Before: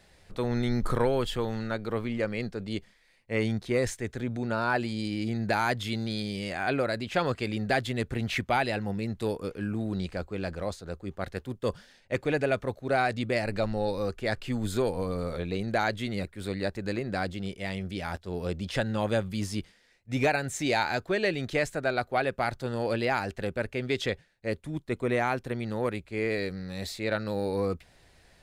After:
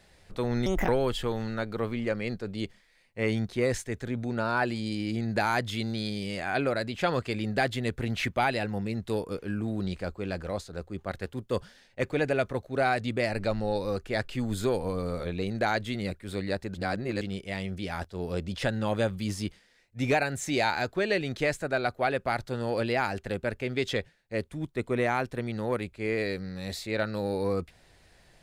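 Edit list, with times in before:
0:00.66–0:01.01: play speed 157%
0:16.87–0:17.34: reverse

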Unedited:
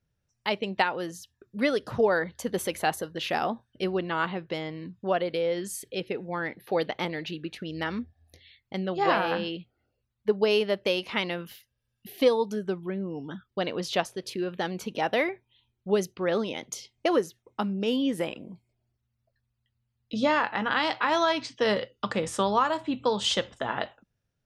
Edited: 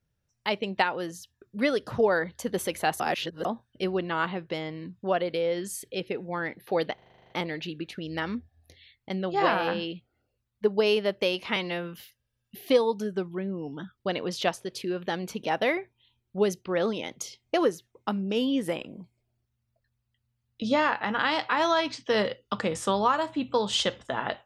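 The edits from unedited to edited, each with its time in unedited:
0:03.00–0:03.45: reverse
0:06.94: stutter 0.04 s, 10 plays
0:11.20–0:11.45: time-stretch 1.5×

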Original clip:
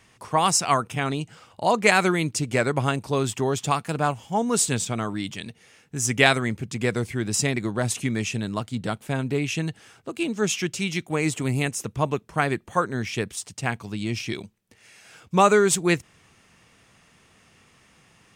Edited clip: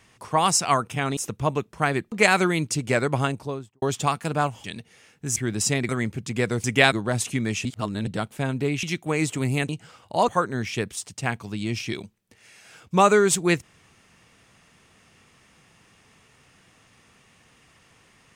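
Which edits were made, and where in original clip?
0:01.17–0:01.76: swap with 0:11.73–0:12.68
0:02.83–0:03.46: fade out and dull
0:04.28–0:05.34: remove
0:06.06–0:06.34: swap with 0:07.09–0:07.62
0:08.35–0:08.77: reverse
0:09.53–0:10.87: remove

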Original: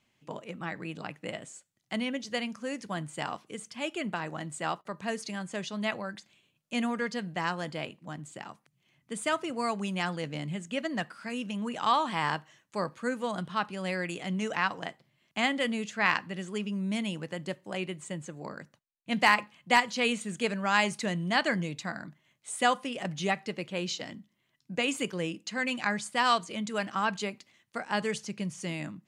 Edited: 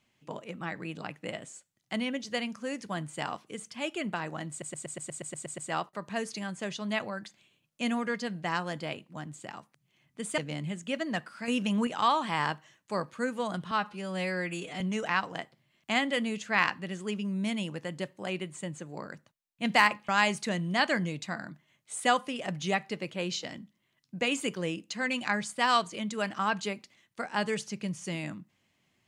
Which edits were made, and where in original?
0:04.50: stutter 0.12 s, 10 plays
0:09.30–0:10.22: remove
0:11.32–0:11.71: clip gain +6 dB
0:13.55–0:14.28: time-stretch 1.5×
0:19.56–0:20.65: remove

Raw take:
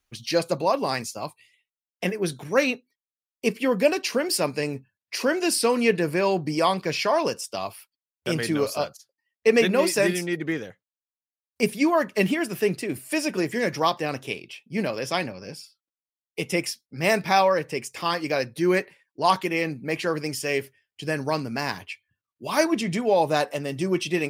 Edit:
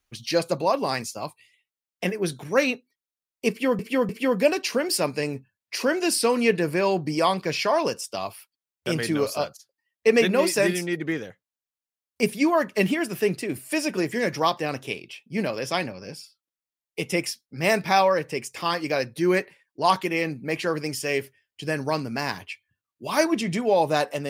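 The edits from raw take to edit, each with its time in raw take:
0:03.49–0:03.79: repeat, 3 plays

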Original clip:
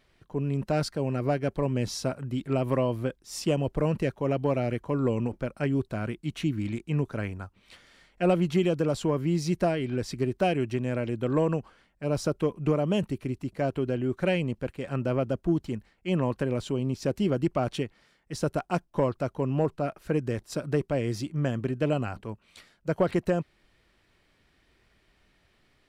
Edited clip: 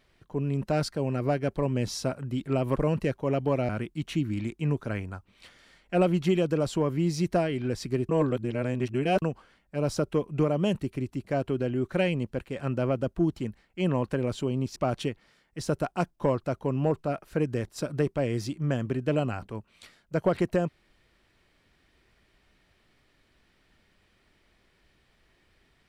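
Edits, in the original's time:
0:02.76–0:03.74: remove
0:04.67–0:05.97: remove
0:10.37–0:11.50: reverse
0:17.04–0:17.50: remove

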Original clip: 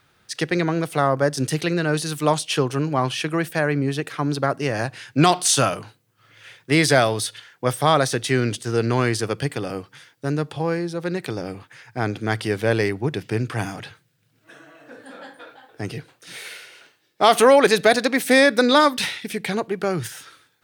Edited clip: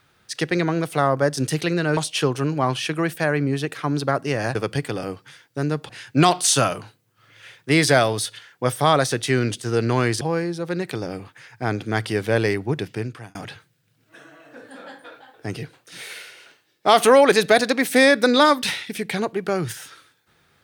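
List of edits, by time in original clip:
0:01.97–0:02.32: remove
0:09.22–0:10.56: move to 0:04.90
0:13.15–0:13.70: fade out

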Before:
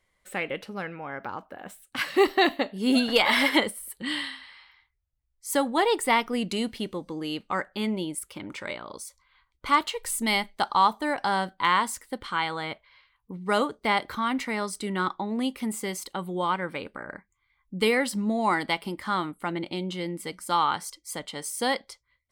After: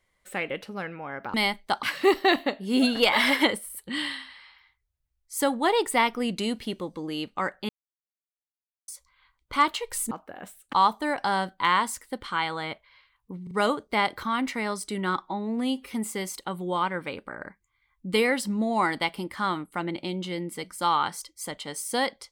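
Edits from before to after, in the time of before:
0:01.34–0:01.96: swap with 0:10.24–0:10.73
0:07.82–0:09.01: silence
0:13.43: stutter 0.04 s, 3 plays
0:15.14–0:15.62: time-stretch 1.5×

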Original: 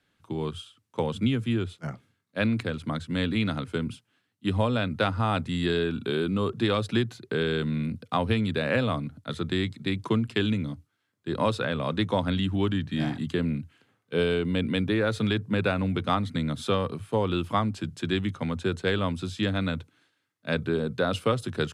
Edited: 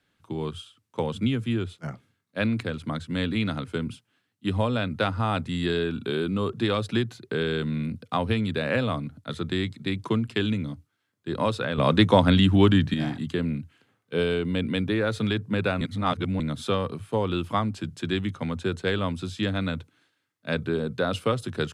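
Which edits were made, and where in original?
0:11.78–0:12.94: clip gain +8 dB
0:15.81–0:16.40: reverse

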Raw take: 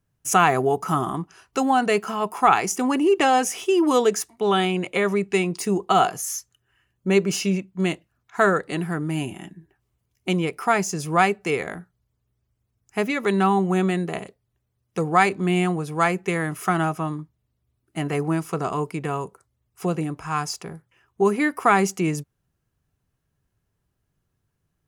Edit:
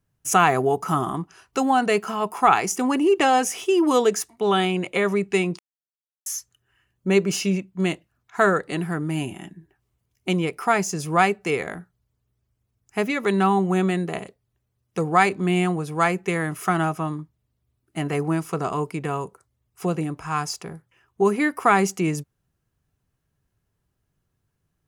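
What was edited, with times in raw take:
0:05.59–0:06.26: silence

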